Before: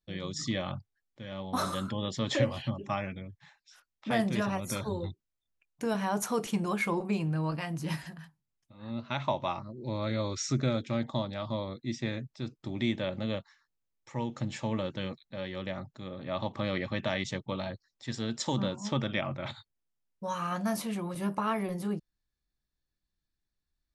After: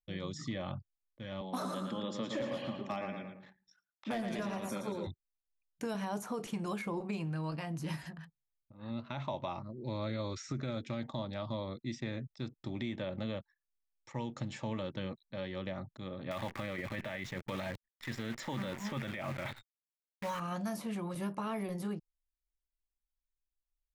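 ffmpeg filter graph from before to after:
ffmpeg -i in.wav -filter_complex "[0:a]asettb=1/sr,asplit=3[link_01][link_02][link_03];[link_01]atrim=end=1.414[link_04];[link_02]atrim=start=1.41:end=5.07,asetpts=PTS-STARTPTS,afade=type=in:duration=0.004:curve=qsin,afade=type=out:start_time=3.656:duration=0.004:curve=qsin,highpass=frequency=170:width=0.5412,highpass=frequency=170:width=1.3066,asoftclip=type=hard:threshold=-22.5dB,asplit=2[link_05][link_06];[link_06]adelay=112,lowpass=frequency=4800:poles=1,volume=-6.5dB,asplit=2[link_07][link_08];[link_08]adelay=112,lowpass=frequency=4800:poles=1,volume=0.41,asplit=2[link_09][link_10];[link_10]adelay=112,lowpass=frequency=4800:poles=1,volume=0.41,asplit=2[link_11][link_12];[link_12]adelay=112,lowpass=frequency=4800:poles=1,volume=0.41,asplit=2[link_13][link_14];[link_14]adelay=112,lowpass=frequency=4800:poles=1,volume=0.41[link_15];[link_05][link_07][link_09][link_11][link_13][link_15]amix=inputs=6:normalize=0,atrim=end_sample=161406[link_16];[link_03]atrim=start=5.066[link_17];[link_04][link_16]acrossfade=duration=0.004:curve1=hsin:curve2=qsin[link_18];[link_18][link_17]acrossfade=duration=0.004:curve1=qsin:curve2=hsin,asettb=1/sr,asplit=3[link_19][link_20][link_21];[link_19]atrim=end=16.314[link_22];[link_20]atrim=start=16.31:end=20.4,asetpts=PTS-STARTPTS,afade=type=in:duration=0.004:curve=qsin,afade=type=out:start_time=4.086:duration=0.004:curve=qsin,acrusher=bits=8:dc=4:mix=0:aa=0.000001,equalizer=frequency=2000:width_type=o:width=1.2:gain=14.5[link_23];[link_21]atrim=start=20.396[link_24];[link_22][link_23]acrossfade=duration=0.004:curve1=hsin:curve2=qsin[link_25];[link_25][link_24]acrossfade=duration=0.004:curve1=qsin:curve2=hsin,anlmdn=0.001,alimiter=limit=-22.5dB:level=0:latency=1:release=20,acrossover=split=970|2200[link_26][link_27][link_28];[link_26]acompressor=threshold=-33dB:ratio=4[link_29];[link_27]acompressor=threshold=-48dB:ratio=4[link_30];[link_28]acompressor=threshold=-48dB:ratio=4[link_31];[link_29][link_30][link_31]amix=inputs=3:normalize=0,volume=-1.5dB" out.wav

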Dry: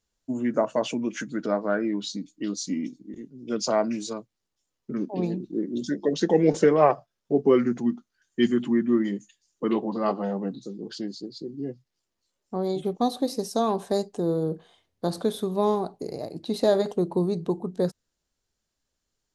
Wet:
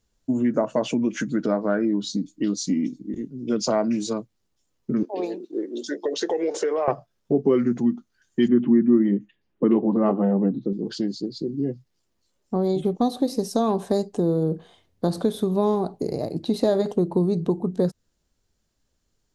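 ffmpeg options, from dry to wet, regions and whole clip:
ffmpeg -i in.wav -filter_complex "[0:a]asettb=1/sr,asplit=3[link_01][link_02][link_03];[link_01]atrim=end=1.854[link_04];[link_02]atrim=start=1.85:end=2.31,asetpts=PTS-STARTPTS,afade=type=in:duration=0.004:curve=qsin,afade=type=out:start_time=0.456:duration=0.004:curve=qsin,equalizer=frequency=2200:width_type=o:width=0.65:gain=-11,bandreject=frequency=2700:width=16[link_05];[link_03]atrim=start=2.306[link_06];[link_04][link_05]acrossfade=duration=0.004:curve1=hsin:curve2=qsin[link_07];[link_07][link_06]acrossfade=duration=0.004:curve1=qsin:curve2=hsin,asettb=1/sr,asplit=3[link_08][link_09][link_10];[link_08]atrim=end=5.034[link_11];[link_09]atrim=start=5.03:end=6.88,asetpts=PTS-STARTPTS,afade=type=in:duration=0.004:curve=qsin,afade=type=out:start_time=1.846:duration=0.004:curve=qsin,highpass=frequency=400:width=0.5412,highpass=frequency=400:width=1.3066,acompressor=threshold=-26dB:ratio=4:attack=3.2:release=140:knee=1:detection=peak[link_12];[link_10]atrim=start=6.876[link_13];[link_11][link_12]acrossfade=duration=0.004:curve1=hsin:curve2=qsin[link_14];[link_14][link_13]acrossfade=duration=0.004:curve1=qsin:curve2=hsin,asettb=1/sr,asplit=3[link_15][link_16][link_17];[link_15]atrim=end=8.484[link_18];[link_16]atrim=start=8.48:end=10.73,asetpts=PTS-STARTPTS,afade=type=in:duration=0.004:curve=qsin,afade=type=out:start_time=2.246:duration=0.004:curve=qsin,lowpass=frequency=2700:width=0.5412,lowpass=frequency=2700:width=1.3066,equalizer=frequency=280:width=0.55:gain=6[link_19];[link_17]atrim=start=10.726[link_20];[link_18][link_19]acrossfade=duration=0.004:curve1=hsin:curve2=qsin[link_21];[link_21][link_20]acrossfade=duration=0.004:curve1=qsin:curve2=hsin,lowshelf=frequency=430:gain=7.5,acompressor=threshold=-25dB:ratio=2,volume=3.5dB" out.wav

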